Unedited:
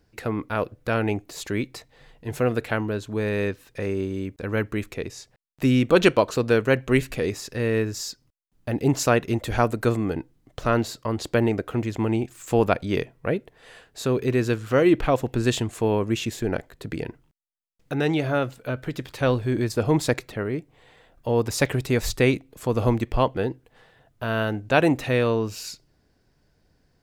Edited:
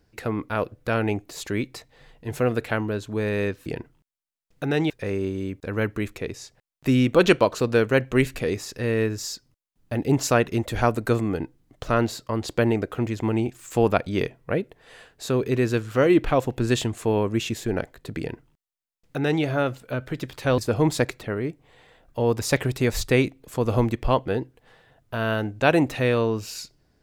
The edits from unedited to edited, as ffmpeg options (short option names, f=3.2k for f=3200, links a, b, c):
-filter_complex "[0:a]asplit=4[a][b][c][d];[a]atrim=end=3.662[e];[b]atrim=start=16.948:end=18.192[f];[c]atrim=start=3.658:end=19.342[g];[d]atrim=start=19.668[h];[e][f]acrossfade=d=0.004:c1=hsin:c2=hsin[i];[i][g]acrossfade=d=0.004:c1=hsin:c2=hsin[j];[j][h]acrossfade=d=0.004:c1=hsin:c2=hsin"